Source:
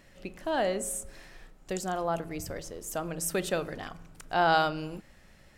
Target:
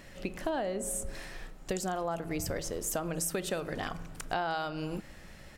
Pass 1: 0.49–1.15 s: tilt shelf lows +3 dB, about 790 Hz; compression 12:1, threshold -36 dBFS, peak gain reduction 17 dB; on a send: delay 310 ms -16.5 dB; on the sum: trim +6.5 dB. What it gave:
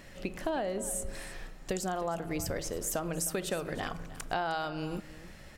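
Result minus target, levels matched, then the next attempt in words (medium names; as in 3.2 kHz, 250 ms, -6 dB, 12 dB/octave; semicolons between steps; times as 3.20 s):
echo-to-direct +11 dB
0.49–1.15 s: tilt shelf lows +3 dB, about 790 Hz; compression 12:1, threshold -36 dBFS, peak gain reduction 17 dB; on a send: delay 310 ms -27.5 dB; on the sum: trim +6.5 dB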